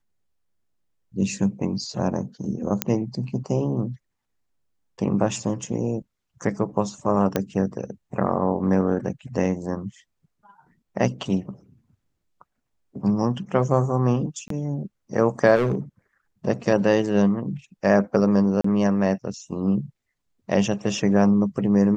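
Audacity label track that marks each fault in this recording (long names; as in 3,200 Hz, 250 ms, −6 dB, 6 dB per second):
2.820000	2.820000	click −3 dBFS
7.360000	7.360000	click −8 dBFS
14.480000	14.500000	drop-out 23 ms
15.550000	15.750000	clipping −17 dBFS
18.610000	18.640000	drop-out 34 ms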